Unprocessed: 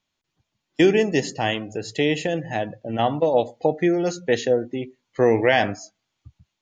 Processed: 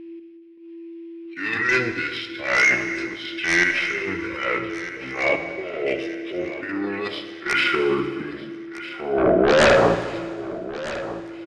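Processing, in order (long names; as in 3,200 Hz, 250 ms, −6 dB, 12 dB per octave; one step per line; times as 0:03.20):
running median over 5 samples
band-pass filter sweep 3,200 Hz → 930 Hz, 0:04.15–0:05.20
formants moved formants +5 semitones
steady tone 580 Hz −55 dBFS
gate pattern "x..xxxx.x" 136 BPM −12 dB
in parallel at −4 dB: sine wavefolder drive 18 dB, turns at −7.5 dBFS
on the sum: transient designer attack −10 dB, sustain +5 dB
on a send: repeating echo 724 ms, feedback 42%, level −15 dB
on the sum: four-comb reverb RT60 1.1 s, combs from 30 ms, DRR 9 dB
wrong playback speed 78 rpm record played at 45 rpm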